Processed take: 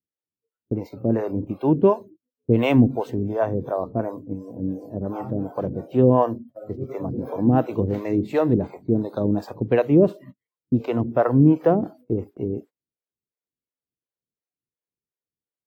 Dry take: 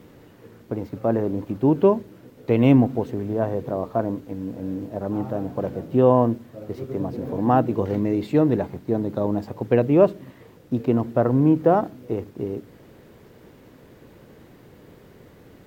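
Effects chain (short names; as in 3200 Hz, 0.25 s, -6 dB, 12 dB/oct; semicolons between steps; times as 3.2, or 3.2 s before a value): spectral noise reduction 25 dB; gate -41 dBFS, range -28 dB; harmonic tremolo 2.8 Hz, depth 100%, crossover 450 Hz; gain +5.5 dB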